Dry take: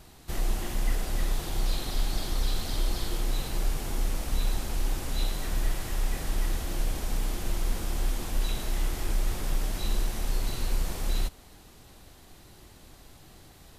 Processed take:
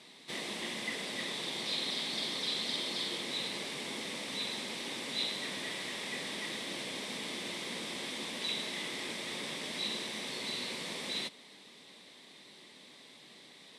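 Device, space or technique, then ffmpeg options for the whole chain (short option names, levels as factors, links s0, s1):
television speaker: -af "highpass=f=210:w=0.5412,highpass=f=210:w=1.3066,equalizer=f=330:t=q:w=4:g=-6,equalizer=f=750:t=q:w=4:g=-8,equalizer=f=1400:t=q:w=4:g=-9,equalizer=f=2100:t=q:w=4:g=8,equalizer=f=3600:t=q:w=4:g=9,equalizer=f=6800:t=q:w=4:g=-7,lowpass=f=8900:w=0.5412,lowpass=f=8900:w=1.3066"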